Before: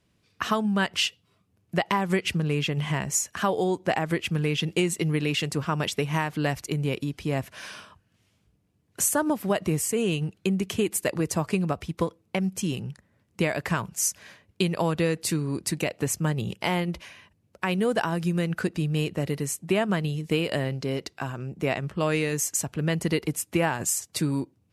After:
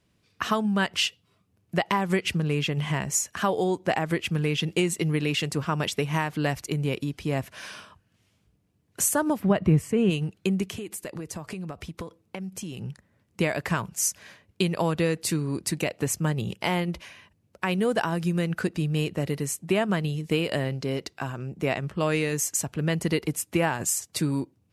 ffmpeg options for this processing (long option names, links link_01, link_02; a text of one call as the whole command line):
ffmpeg -i in.wav -filter_complex "[0:a]asplit=3[link_01][link_02][link_03];[link_01]afade=type=out:start_time=9.39:duration=0.02[link_04];[link_02]bass=frequency=250:gain=9,treble=frequency=4000:gain=-15,afade=type=in:start_time=9.39:duration=0.02,afade=type=out:start_time=10.09:duration=0.02[link_05];[link_03]afade=type=in:start_time=10.09:duration=0.02[link_06];[link_04][link_05][link_06]amix=inputs=3:normalize=0,asettb=1/sr,asplit=3[link_07][link_08][link_09];[link_07]atrim=end=10.694[link_10];[link_08]atrim=start=10.69:end=12.82,asetpts=PTS-STARTPTS,afade=type=in:duration=0.004:curve=qsin,afade=type=out:start_time=2.126:duration=0.004:curve=qsin,acompressor=threshold=-32dB:ratio=6:attack=3.2:release=140:knee=1:detection=peak[link_11];[link_09]atrim=start=12.816[link_12];[link_10][link_11]acrossfade=duration=0.004:curve1=hsin:curve2=qsin[link_13];[link_13][link_12]acrossfade=duration=0.004:curve1=qsin:curve2=hsin" out.wav